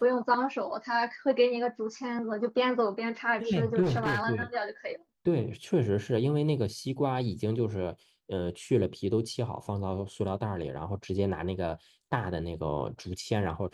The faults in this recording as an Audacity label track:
3.820000	4.270000	clipping −23.5 dBFS

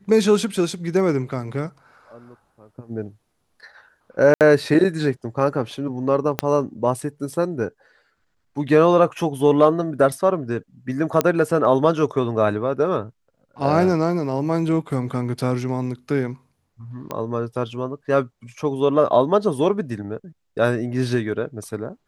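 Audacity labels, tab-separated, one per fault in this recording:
4.340000	4.410000	drop-out 68 ms
6.390000	6.390000	click −5 dBFS
11.210000	11.210000	click −4 dBFS
17.110000	17.110000	click −14 dBFS

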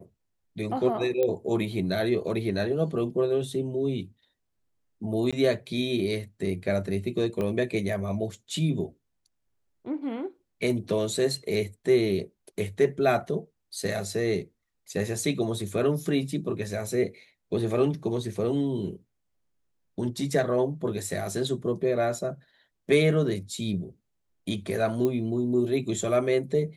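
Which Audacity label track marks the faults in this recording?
1.230000	1.230000	click −15 dBFS
5.310000	5.330000	drop-out 16 ms
7.410000	7.410000	click −19 dBFS
25.050000	25.050000	click −16 dBFS

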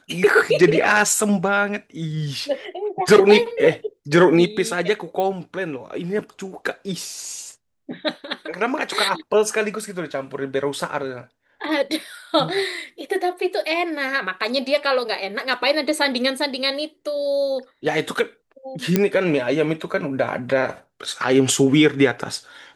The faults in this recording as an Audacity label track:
5.200000	5.200000	click −13 dBFS
18.960000	18.960000	click −3 dBFS

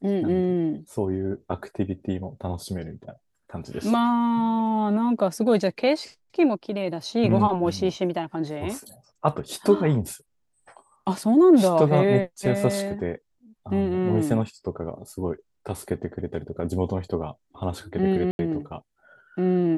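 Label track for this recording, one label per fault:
18.310000	18.390000	drop-out 81 ms

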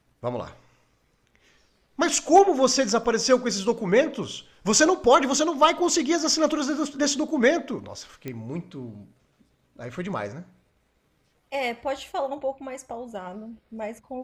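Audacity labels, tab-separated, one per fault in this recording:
3.040000	3.040000	drop-out 4.5 ms
8.280000	8.280000	click −19 dBFS

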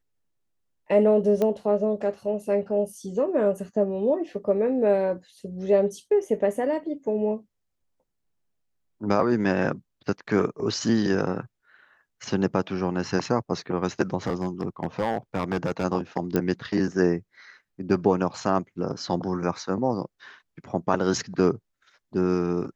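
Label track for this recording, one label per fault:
1.420000	1.420000	click −14 dBFS
14.270000	15.850000	clipping −19.5 dBFS
16.360000	16.360000	click −11 dBFS

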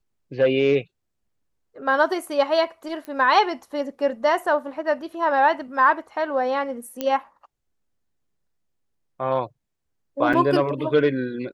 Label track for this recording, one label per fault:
3.050000	3.050000	click −22 dBFS
7.010000	7.010000	click −12 dBFS
10.330000	10.340000	drop-out 5.6 ms

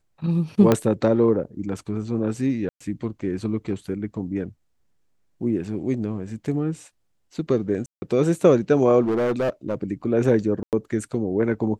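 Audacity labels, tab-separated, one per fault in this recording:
0.720000	0.720000	click −5 dBFS
2.690000	2.810000	drop-out 115 ms
7.860000	8.020000	drop-out 160 ms
9.030000	9.750000	clipping −19 dBFS
10.630000	10.730000	drop-out 98 ms

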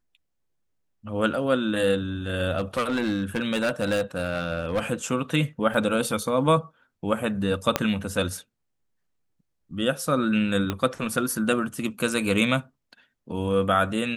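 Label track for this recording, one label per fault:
2.570000	4.920000	clipping −20 dBFS
5.740000	5.740000	drop-out 3.6 ms
7.760000	7.760000	click −5 dBFS
10.700000	10.700000	click −12 dBFS

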